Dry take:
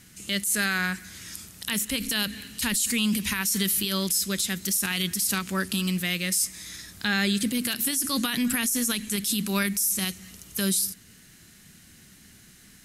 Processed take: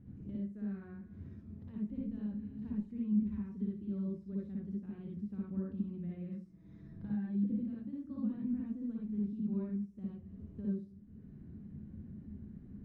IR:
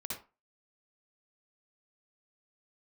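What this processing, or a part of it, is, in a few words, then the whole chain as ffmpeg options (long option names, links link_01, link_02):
television next door: -filter_complex "[0:a]asettb=1/sr,asplit=3[link_01][link_02][link_03];[link_01]atrim=end=6.254[link_04];[link_02]atrim=start=6.25:end=7.56,asetpts=PTS-STARTPTS,afade=type=in:duration=0.004:curve=qsin,afade=type=out:start_time=1.306:duration=0.004:curve=qsin,aecho=1:1:6.2:0.65,atrim=end_sample=57771[link_05];[link_03]atrim=start=7.556[link_06];[link_04][link_05]acrossfade=duration=0.004:curve1=hsin:curve2=qsin[link_07];[link_07][link_06]acrossfade=duration=0.004:curve1=qsin:curve2=hsin,acompressor=threshold=-44dB:ratio=3,lowpass=320[link_08];[1:a]atrim=start_sample=2205[link_09];[link_08][link_09]afir=irnorm=-1:irlink=0,volume=6.5dB"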